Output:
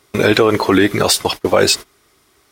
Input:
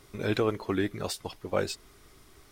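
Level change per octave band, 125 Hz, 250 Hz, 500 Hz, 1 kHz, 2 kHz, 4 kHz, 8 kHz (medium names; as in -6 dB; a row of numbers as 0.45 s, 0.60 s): +12.5 dB, +16.0 dB, +16.0 dB, +18.0 dB, +19.0 dB, +21.5 dB, +22.0 dB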